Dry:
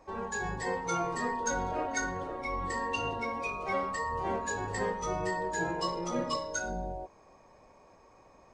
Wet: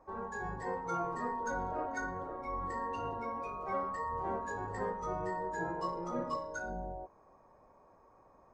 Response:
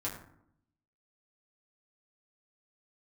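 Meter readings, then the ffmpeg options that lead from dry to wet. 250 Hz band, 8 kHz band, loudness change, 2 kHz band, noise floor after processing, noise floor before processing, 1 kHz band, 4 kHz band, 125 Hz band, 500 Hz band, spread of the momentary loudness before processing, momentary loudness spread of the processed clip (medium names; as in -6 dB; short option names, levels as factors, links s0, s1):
-5.0 dB, -16.0 dB, -4.5 dB, -7.5 dB, -63 dBFS, -59 dBFS, -3.0 dB, -17.0 dB, -5.0 dB, -4.5 dB, 4 LU, 4 LU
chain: -af "highshelf=f=1900:t=q:w=1.5:g=-10.5,volume=0.562"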